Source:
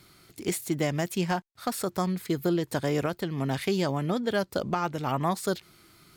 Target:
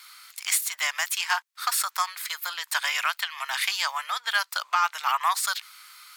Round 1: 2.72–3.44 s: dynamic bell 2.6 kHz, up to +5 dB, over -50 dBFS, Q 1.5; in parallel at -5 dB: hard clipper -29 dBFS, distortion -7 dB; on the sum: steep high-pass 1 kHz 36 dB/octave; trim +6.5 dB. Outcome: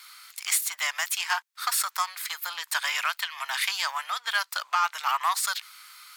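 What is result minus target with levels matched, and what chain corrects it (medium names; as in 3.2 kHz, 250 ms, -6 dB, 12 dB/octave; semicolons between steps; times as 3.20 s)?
hard clipper: distortion +13 dB
2.72–3.44 s: dynamic bell 2.6 kHz, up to +5 dB, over -50 dBFS, Q 1.5; in parallel at -5 dB: hard clipper -20.5 dBFS, distortion -20 dB; on the sum: steep high-pass 1 kHz 36 dB/octave; trim +6.5 dB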